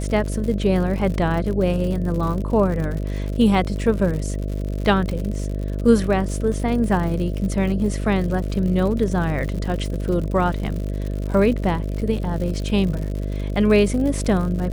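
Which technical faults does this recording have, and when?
mains buzz 50 Hz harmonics 13 −25 dBFS
surface crackle 94 per second −28 dBFS

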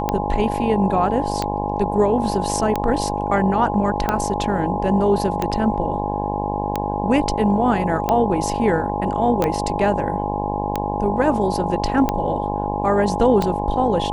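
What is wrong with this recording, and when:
mains buzz 50 Hz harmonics 21 −25 dBFS
scratch tick 45 rpm −7 dBFS
whistle 830 Hz −25 dBFS
0:09.44: click −8 dBFS

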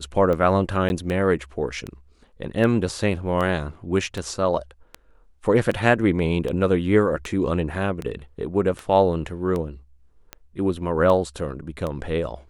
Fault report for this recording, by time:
scratch tick 78 rpm −16 dBFS
0:00.89–0:00.90: drop-out 11 ms

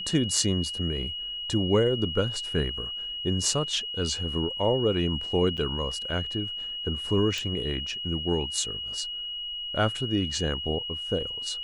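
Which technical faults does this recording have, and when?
whistle 2,900 Hz −32 dBFS
0:05.57–0:05.58: drop-out 7.7 ms
0:07.38: click

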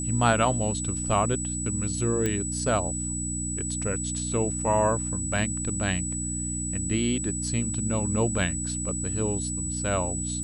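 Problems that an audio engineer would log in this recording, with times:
mains hum 60 Hz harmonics 5 −33 dBFS
whistle 7,900 Hz −31 dBFS
0:02.26: click −13 dBFS

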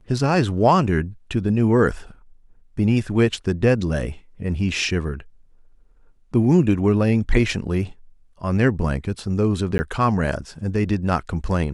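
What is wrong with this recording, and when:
0:09.78–0:09.79: drop-out 10 ms

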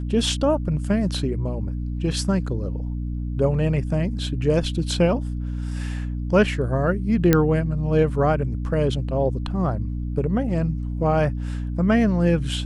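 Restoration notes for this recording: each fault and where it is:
mains hum 60 Hz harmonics 5 −27 dBFS
0:07.33: click −3 dBFS

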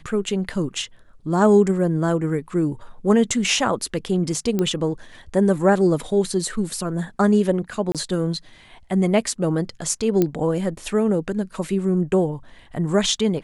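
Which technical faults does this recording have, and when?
0:04.59: click −10 dBFS
0:07.92–0:07.95: drop-out 27 ms
0:10.22: click −7 dBFS

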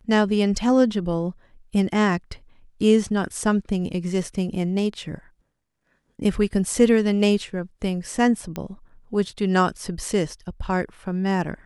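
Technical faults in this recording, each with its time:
0:08.56: click −15 dBFS

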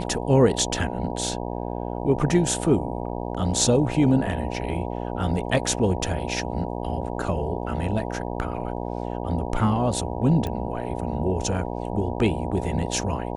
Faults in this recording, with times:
mains buzz 60 Hz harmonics 16 −30 dBFS
0:10.47: click −17 dBFS

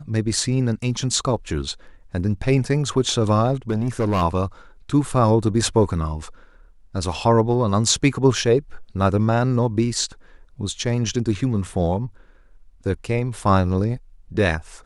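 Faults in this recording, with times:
0:03.70–0:04.23: clipping −16.5 dBFS

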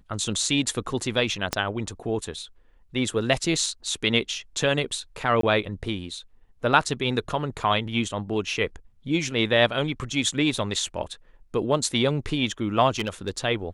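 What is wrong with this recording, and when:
0:01.53: click −8 dBFS
0:05.41–0:05.43: drop-out 23 ms
0:12.99–0:13.38: clipping −20.5 dBFS

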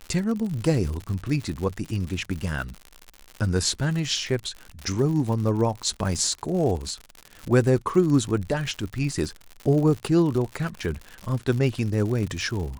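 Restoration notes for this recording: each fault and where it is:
surface crackle 110 per second −30 dBFS

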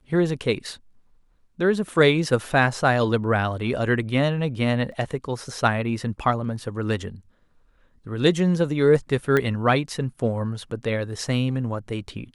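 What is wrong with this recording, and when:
0:04.92: drop-out 3 ms
0:09.37: click −10 dBFS

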